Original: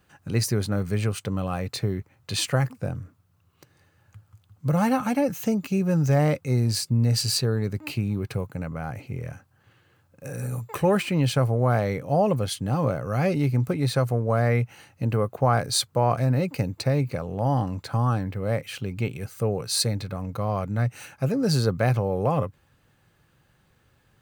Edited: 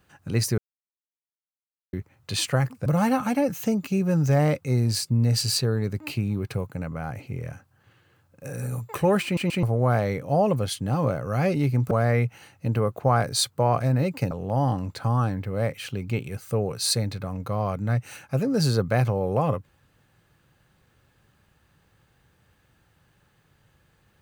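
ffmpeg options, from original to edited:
-filter_complex "[0:a]asplit=9[a][b][c][d][e][f][g][h][i];[a]atrim=end=0.58,asetpts=PTS-STARTPTS,afade=t=out:st=0.576:d=0.004:c=hsin[j];[b]atrim=start=0.58:end=1.93,asetpts=PTS-STARTPTS,volume=0[k];[c]atrim=start=1.93:end=2.862,asetpts=PTS-STARTPTS,afade=t=in:d=0.004:c=hsin[l];[d]atrim=start=4.658:end=11.172[m];[e]atrim=start=11.038:end=11.172[n];[f]atrim=start=11.038:end=11.172[o];[g]atrim=start=11.428:end=13.712[p];[h]atrim=start=14.278:end=16.682[q];[i]atrim=start=17.198[r];[j][k][l]concat=n=3:v=0:a=1[s];[s][m]acrossfade=d=0.004:c1=hsin:c2=hsin[t];[t][n]acrossfade=d=0.004:c1=hsin:c2=hsin[u];[u][o]acrossfade=d=0.004:c1=hsin:c2=hsin[v];[v][p]acrossfade=d=0.004:c1=hsin:c2=hsin[w];[w][q]acrossfade=d=0.004:c1=hsin:c2=hsin[x];[x][r]acrossfade=d=0.004:c1=hsin:c2=hsin"

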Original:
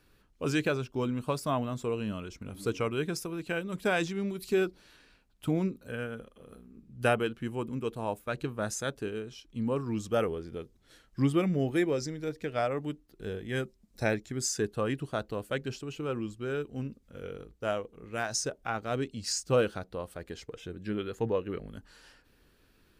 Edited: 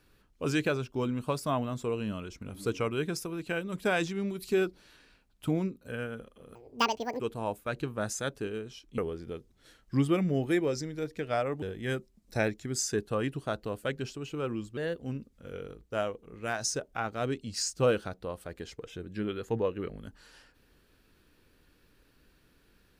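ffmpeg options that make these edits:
-filter_complex "[0:a]asplit=8[a][b][c][d][e][f][g][h];[a]atrim=end=5.85,asetpts=PTS-STARTPTS,afade=t=out:st=5.52:d=0.33:silence=0.501187[i];[b]atrim=start=5.85:end=6.554,asetpts=PTS-STARTPTS,afade=t=in:d=0.004:c=hsin:silence=0.501187[j];[c]atrim=start=6.55:end=7.81,asetpts=PTS-STARTPTS,asetrate=85554,aresample=44100,atrim=end_sample=28642,asetpts=PTS-STARTPTS[k];[d]atrim=start=7.806:end=9.592[l];[e]atrim=start=10.228:end=12.872[m];[f]atrim=start=13.278:end=16.434[n];[g]atrim=start=16.43:end=16.72,asetpts=PTS-STARTPTS,asetrate=51156,aresample=44100[o];[h]atrim=start=16.716[p];[i][j]concat=n=2:v=0:a=1[q];[q][k]acrossfade=d=0.004:c1=hsin:c2=hsin[r];[r][l]acrossfade=d=0.004:c1=hsin:c2=hsin[s];[s][m]acrossfade=d=0.004:c1=hsin:c2=hsin[t];[t][n]acrossfade=d=0.004:c1=hsin:c2=hsin[u];[u][o]acrossfade=d=0.004:c1=hsin:c2=hsin[v];[v][p]acrossfade=d=0.004:c1=hsin:c2=hsin"

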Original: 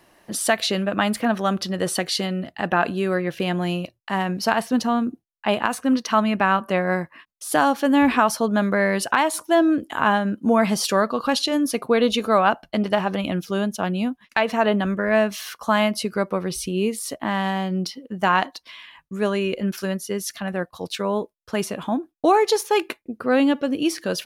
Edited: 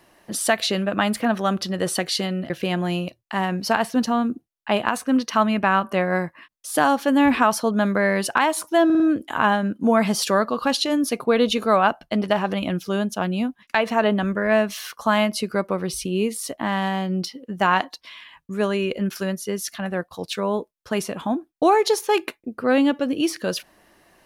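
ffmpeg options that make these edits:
-filter_complex "[0:a]asplit=5[a][b][c][d][e];[a]atrim=end=2.502[f];[b]atrim=start=3.268:end=9.672[g];[c]atrim=start=9.618:end=9.672[h];[d]atrim=start=9.618:end=9.672[i];[e]atrim=start=9.618[j];[f][g]acrossfade=d=0.004:c1=hsin:c2=hsin[k];[k][h]acrossfade=d=0.004:c1=hsin:c2=hsin[l];[l][i]acrossfade=d=0.004:c1=hsin:c2=hsin[m];[m][j]acrossfade=d=0.004:c1=hsin:c2=hsin"

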